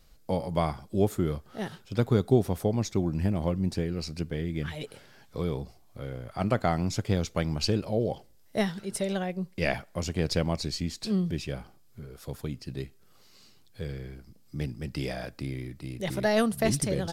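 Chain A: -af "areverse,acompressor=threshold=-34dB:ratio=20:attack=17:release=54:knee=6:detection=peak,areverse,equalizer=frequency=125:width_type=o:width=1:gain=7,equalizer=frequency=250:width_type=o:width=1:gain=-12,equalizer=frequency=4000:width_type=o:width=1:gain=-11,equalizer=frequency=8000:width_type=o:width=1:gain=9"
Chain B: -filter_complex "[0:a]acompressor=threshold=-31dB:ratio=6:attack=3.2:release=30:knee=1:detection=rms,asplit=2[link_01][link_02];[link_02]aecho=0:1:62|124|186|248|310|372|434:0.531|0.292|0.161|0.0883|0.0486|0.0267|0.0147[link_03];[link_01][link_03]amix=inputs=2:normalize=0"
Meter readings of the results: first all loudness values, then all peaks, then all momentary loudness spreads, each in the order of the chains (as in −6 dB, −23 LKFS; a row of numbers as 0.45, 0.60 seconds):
−38.0, −35.5 LKFS; −18.0, −20.0 dBFS; 8, 9 LU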